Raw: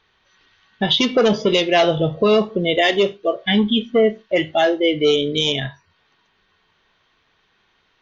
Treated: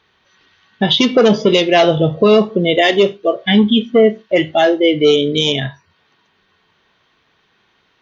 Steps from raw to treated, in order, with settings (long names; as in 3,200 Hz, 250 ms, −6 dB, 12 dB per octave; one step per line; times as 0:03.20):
high-pass filter 210 Hz 6 dB per octave
low-shelf EQ 290 Hz +9 dB
level +3 dB